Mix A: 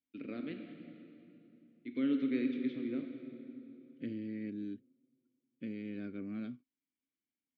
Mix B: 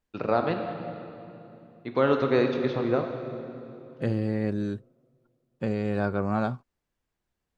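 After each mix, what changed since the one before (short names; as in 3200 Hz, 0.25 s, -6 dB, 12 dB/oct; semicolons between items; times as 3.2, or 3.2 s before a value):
master: remove vowel filter i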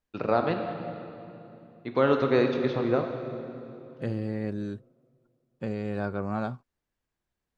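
second voice -4.0 dB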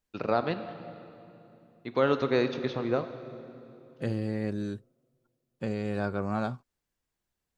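first voice: send -7.5 dB; master: add high shelf 4400 Hz +9 dB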